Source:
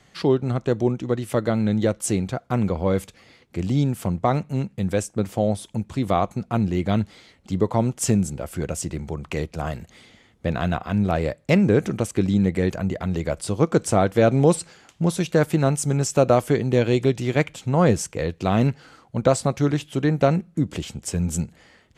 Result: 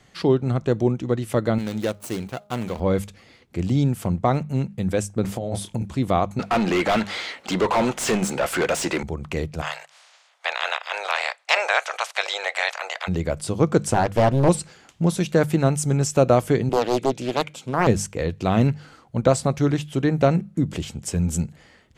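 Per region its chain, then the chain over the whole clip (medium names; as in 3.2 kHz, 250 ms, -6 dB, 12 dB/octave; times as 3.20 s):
1.58–2.80 s: median filter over 25 samples + tilt EQ +3 dB/octave + de-hum 205.6 Hz, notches 6
5.22–5.89 s: doubling 26 ms -7.5 dB + compressor with a negative ratio -26 dBFS
6.39–9.03 s: high-pass 670 Hz 6 dB/octave + overdrive pedal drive 31 dB, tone 2.3 kHz, clips at -11.5 dBFS
9.61–13.07 s: spectral peaks clipped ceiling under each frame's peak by 26 dB + steep high-pass 590 Hz + distance through air 62 m
13.94–14.49 s: peaking EQ 190 Hz -4.5 dB 0.34 oct + overload inside the chain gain 10 dB + loudspeaker Doppler distortion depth 0.98 ms
16.69–17.87 s: high-pass 210 Hz + band-stop 1.8 kHz, Q 5.5 + loudspeaker Doppler distortion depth 0.66 ms
whole clip: bass shelf 170 Hz +3 dB; hum notches 50/100/150/200 Hz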